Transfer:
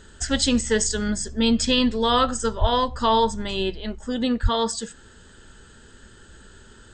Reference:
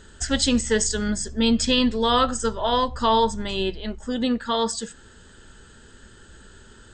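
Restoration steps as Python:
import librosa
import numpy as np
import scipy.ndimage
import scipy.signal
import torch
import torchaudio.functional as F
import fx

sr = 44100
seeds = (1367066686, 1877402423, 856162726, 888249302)

y = fx.fix_deplosive(x, sr, at_s=(2.6, 4.42))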